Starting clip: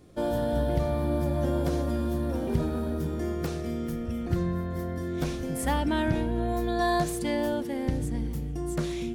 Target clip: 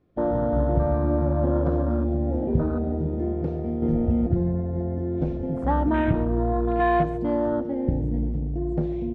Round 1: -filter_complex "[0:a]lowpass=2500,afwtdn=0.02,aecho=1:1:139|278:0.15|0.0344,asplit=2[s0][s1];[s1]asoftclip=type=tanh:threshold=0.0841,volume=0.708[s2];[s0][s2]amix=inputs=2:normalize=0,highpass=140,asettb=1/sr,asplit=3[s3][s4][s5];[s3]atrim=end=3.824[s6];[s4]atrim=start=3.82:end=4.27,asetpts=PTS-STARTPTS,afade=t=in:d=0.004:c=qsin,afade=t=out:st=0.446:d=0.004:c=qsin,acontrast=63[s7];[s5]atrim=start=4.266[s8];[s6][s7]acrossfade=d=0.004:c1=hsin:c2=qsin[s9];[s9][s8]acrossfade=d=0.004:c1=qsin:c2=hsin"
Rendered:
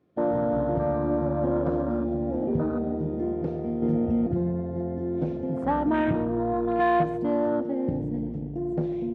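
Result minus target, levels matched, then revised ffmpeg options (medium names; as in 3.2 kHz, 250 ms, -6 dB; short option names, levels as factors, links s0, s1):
saturation: distortion +16 dB; 125 Hz band -4.0 dB
-filter_complex "[0:a]lowpass=2500,afwtdn=0.02,aecho=1:1:139|278:0.15|0.0344,asplit=2[s0][s1];[s1]asoftclip=type=tanh:threshold=0.282,volume=0.708[s2];[s0][s2]amix=inputs=2:normalize=0,asettb=1/sr,asplit=3[s3][s4][s5];[s3]atrim=end=3.824[s6];[s4]atrim=start=3.82:end=4.27,asetpts=PTS-STARTPTS,afade=t=in:d=0.004:c=qsin,afade=t=out:st=0.446:d=0.004:c=qsin,acontrast=63[s7];[s5]atrim=start=4.266[s8];[s6][s7]acrossfade=d=0.004:c1=hsin:c2=qsin[s9];[s9][s8]acrossfade=d=0.004:c1=qsin:c2=hsin"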